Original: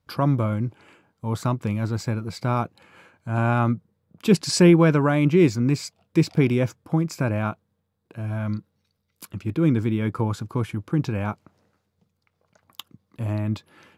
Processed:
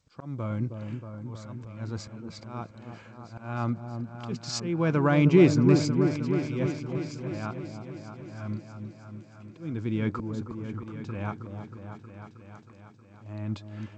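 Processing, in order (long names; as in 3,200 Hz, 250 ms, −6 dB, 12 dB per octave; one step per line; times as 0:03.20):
volume swells 590 ms
echo whose low-pass opens from repeat to repeat 316 ms, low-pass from 750 Hz, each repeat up 1 octave, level −6 dB
level −1 dB
G.722 64 kbit/s 16,000 Hz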